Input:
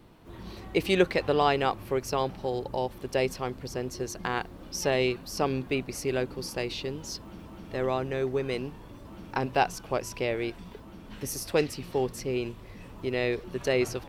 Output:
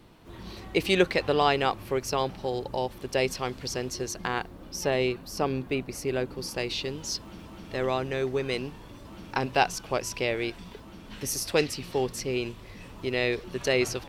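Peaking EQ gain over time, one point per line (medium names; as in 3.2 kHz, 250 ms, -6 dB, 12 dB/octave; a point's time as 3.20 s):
peaking EQ 4.8 kHz 2.8 oct
3.16 s +4 dB
3.65 s +10.5 dB
4.58 s -1.5 dB
6.18 s -1.5 dB
6.85 s +6 dB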